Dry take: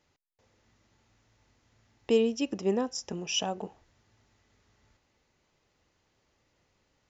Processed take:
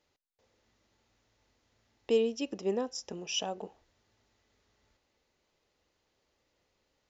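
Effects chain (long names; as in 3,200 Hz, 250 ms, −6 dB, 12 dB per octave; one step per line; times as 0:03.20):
octave-band graphic EQ 125/500/4,000 Hz −5/+4/+4 dB
level −5.5 dB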